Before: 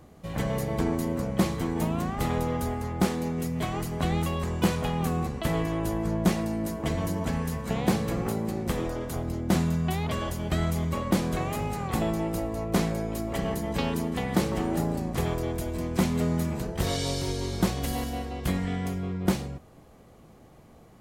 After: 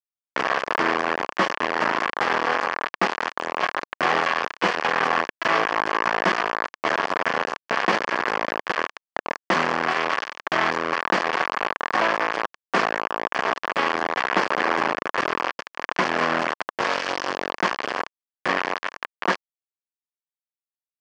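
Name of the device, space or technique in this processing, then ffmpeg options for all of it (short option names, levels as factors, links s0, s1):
hand-held game console: -af "acrusher=bits=3:mix=0:aa=0.000001,highpass=460,equalizer=f=1100:t=q:w=4:g=6,equalizer=f=1700:t=q:w=4:g=6,equalizer=f=3800:t=q:w=4:g=-10,lowpass=f=4400:w=0.5412,lowpass=f=4400:w=1.3066,volume=2.11"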